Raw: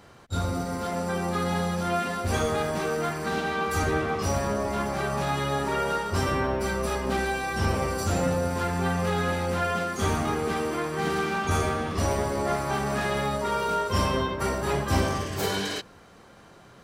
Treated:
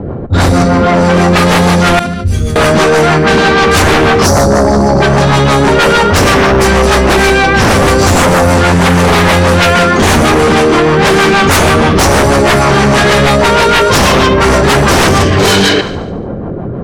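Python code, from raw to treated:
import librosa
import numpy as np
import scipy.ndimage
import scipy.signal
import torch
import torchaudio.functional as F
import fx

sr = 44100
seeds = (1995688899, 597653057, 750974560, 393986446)

p1 = fx.spec_box(x, sr, start_s=4.27, length_s=0.75, low_hz=950.0, high_hz=4200.0, gain_db=-25)
p2 = fx.peak_eq(p1, sr, hz=1900.0, db=-5.5, octaves=1.8, at=(5.06, 5.79))
p3 = np.sign(p2) * np.maximum(np.abs(p2) - 10.0 ** (-39.5 / 20.0), 0.0)
p4 = p2 + F.gain(torch.from_numpy(p3), -12.0).numpy()
p5 = fx.rotary(p4, sr, hz=6.3)
p6 = fx.env_lowpass(p5, sr, base_hz=430.0, full_db=-22.5)
p7 = fx.tone_stack(p6, sr, knobs='10-0-1', at=(1.99, 2.56))
p8 = fx.echo_thinned(p7, sr, ms=72, feedback_pct=51, hz=420.0, wet_db=-22.5)
p9 = fx.fold_sine(p8, sr, drive_db=15, ceiling_db=-10.5)
p10 = fx.env_flatten(p9, sr, amount_pct=50)
y = F.gain(torch.from_numpy(p10), 6.0).numpy()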